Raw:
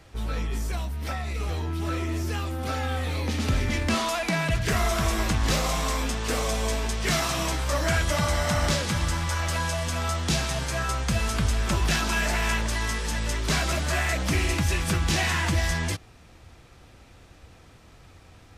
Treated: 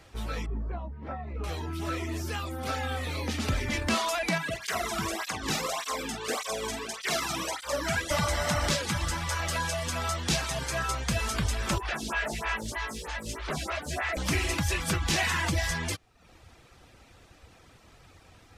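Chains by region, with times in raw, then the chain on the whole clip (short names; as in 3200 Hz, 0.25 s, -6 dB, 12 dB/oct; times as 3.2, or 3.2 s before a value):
0.46–1.44 LPF 1000 Hz + doubler 19 ms -10.5 dB
4.38–8.11 doubler 48 ms -8 dB + tape flanging out of phase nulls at 1.7 Hz, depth 2 ms
11.78–14.17 delta modulation 64 kbps, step -38.5 dBFS + photocell phaser 3.2 Hz
whole clip: reverb removal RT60 0.6 s; low shelf 280 Hz -4.5 dB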